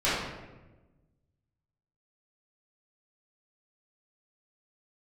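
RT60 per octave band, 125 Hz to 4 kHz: 1.8, 1.6, 1.3, 1.0, 0.95, 0.70 seconds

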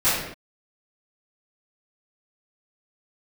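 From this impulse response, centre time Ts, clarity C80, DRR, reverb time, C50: 65 ms, 4.0 dB, −17.0 dB, non-exponential decay, 0.0 dB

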